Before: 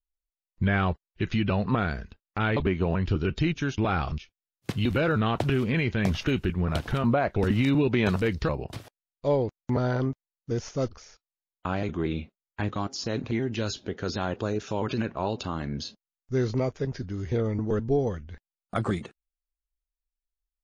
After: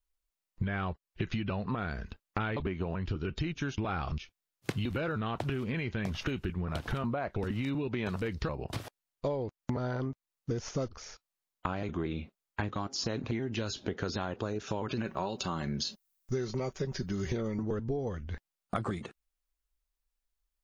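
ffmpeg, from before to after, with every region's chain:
-filter_complex "[0:a]asettb=1/sr,asplit=3[a][b][c];[a]atrim=end=15.054[d];[b]atrim=start=15.05:end=17.63,asetpts=PTS-STARTPTS,afade=t=in:d=0.004:c=qsin,afade=t=out:st=2.576:d=0.004:c=qsin,aemphasis=mode=production:type=50kf,aecho=1:1:5.3:0.48,atrim=end_sample=113778[e];[c]atrim=start=17.626[f];[d][e]acrossfade=d=0.004:c1=hsin:c2=qsin[g];[g][f]acrossfade=d=0.004:c1=qsin:c2=hsin,equalizer=f=1.1k:w=1.5:g=2,acompressor=threshold=-34dB:ratio=16,volume=4.5dB"

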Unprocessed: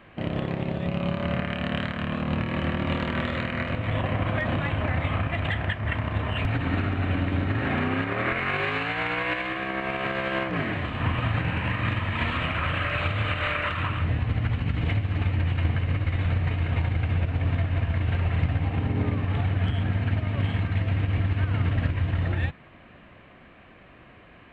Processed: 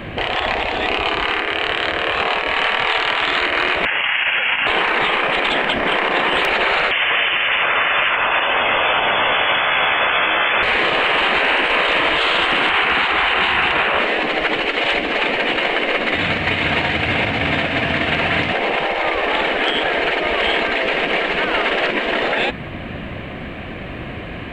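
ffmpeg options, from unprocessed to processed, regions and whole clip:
-filter_complex "[0:a]asettb=1/sr,asplit=3[a][b][c];[a]atrim=end=3.854[d];[b]atrim=start=3.85:end=4.67,asetpts=PTS-STARTPTS,afade=t=in:d=0.004:c=qsin,afade=t=out:st=0.816:d=0.004:c=qsin,highpass=f=1.2k:w=0.5412,highpass=f=1.2k:w=1.3066,lowpass=f=3.3k:t=q:w=0.5098,lowpass=f=3.3k:t=q:w=0.6013,lowpass=f=3.3k:t=q:w=0.9,lowpass=f=3.3k:t=q:w=2.563,afreqshift=-3900[e];[c]atrim=start=4.666[f];[d][e]acrossfade=d=0.004:c1=hsin:c2=qsin[g];[g][f]acrossfade=d=0.004:c1=qsin:c2=hsin,asettb=1/sr,asplit=3[h][i][j];[h]atrim=end=6.914[k];[i]atrim=start=6.91:end=10.63,asetpts=PTS-STARTPTS,afade=t=in:d=0.004:c=qsin,afade=t=out:st=3.716:d=0.004:c=qsin,aecho=1:1:510:0.668,atrim=end_sample=164052,acrusher=bits=9:mode=log:mix=0:aa=0.000001,lowpass=f=3k:t=q:w=0.5098,lowpass=f=3k:t=q:w=0.6013,lowpass=f=3k:t=q:w=0.9,lowpass=f=3k:t=q:w=2.563,afreqshift=-3500[l];[j]atrim=start=10.626[m];[k][l]acrossfade=d=0.004:c1=hsin:c2=qsin[n];[n][m]acrossfade=d=0.004:c1=qsin:c2=hsin,asettb=1/sr,asplit=3[o][p][q];[o]atrim=end=12.694[r];[p]atrim=start=12.69:end=13.99,asetpts=PTS-STARTPTS,afade=t=in:d=0.004:c=qsin,afade=t=out:st=1.296:d=0.004:c=qsin,highpass=150,tiltshelf=f=1.4k:g=7.5[s];[q]atrim=start=13.986[t];[r][s]acrossfade=d=0.004:c1=hsin:c2=qsin[u];[u][t]acrossfade=d=0.004:c1=qsin:c2=hsin,asettb=1/sr,asplit=3[v][w][x];[v]atrim=end=16.144[y];[w]atrim=start=16.14:end=18.53,asetpts=PTS-STARTPTS,afade=t=in:d=0.004:c=qsin,afade=t=out:st=2.386:d=0.004:c=qsin,highpass=f=940:p=1,aecho=1:1:421:0.562,atrim=end_sample=105399[z];[x]atrim=start=18.526[aa];[y][z]acrossfade=d=0.004:c1=hsin:c2=qsin[ab];[ab][aa]acrossfade=d=0.004:c1=qsin:c2=hsin,equalizer=f=1.2k:t=o:w=1.2:g=-6,afftfilt=real='re*lt(hypot(re,im),0.0631)':imag='im*lt(hypot(re,im),0.0631)':win_size=1024:overlap=0.75,alimiter=level_in=28.5dB:limit=-1dB:release=50:level=0:latency=1,volume=-6dB"

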